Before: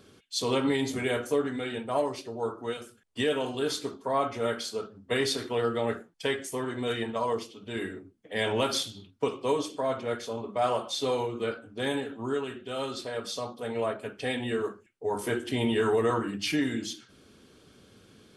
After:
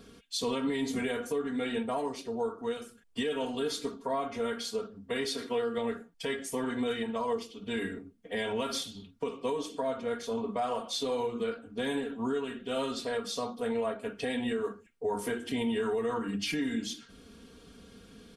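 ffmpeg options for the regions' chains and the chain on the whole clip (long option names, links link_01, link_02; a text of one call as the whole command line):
ffmpeg -i in.wav -filter_complex "[0:a]asettb=1/sr,asplit=3[link_01][link_02][link_03];[link_01]atrim=end=5.244[link_04];[link_02]atrim=start=5.24:end=5.78,asetpts=PTS-STARTPTS,afade=type=in:duration=0.004:curve=qsin,afade=type=out:start_time=0.536:duration=0.004:curve=qsin,lowshelf=frequency=89:gain=-12,bandreject=frequency=860:width=28[link_05];[link_03]atrim=start=5.776[link_06];[link_04][link_05]acrossfade=duration=0.004:curve1=hsin:curve2=qsin[link_07];[link_07][link_06]acrossfade=duration=0.004:curve1=qsin:curve2=hsin,lowshelf=frequency=100:gain=10,aecho=1:1:4.3:0.68,alimiter=limit=-23dB:level=0:latency=1:release=351" out.wav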